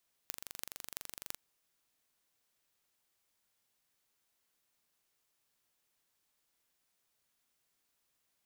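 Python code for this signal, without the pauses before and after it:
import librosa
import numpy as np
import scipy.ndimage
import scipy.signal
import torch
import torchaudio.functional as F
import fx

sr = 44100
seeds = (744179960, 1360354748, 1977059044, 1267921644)

y = fx.impulse_train(sr, length_s=1.07, per_s=23.9, accent_every=8, level_db=-10.5)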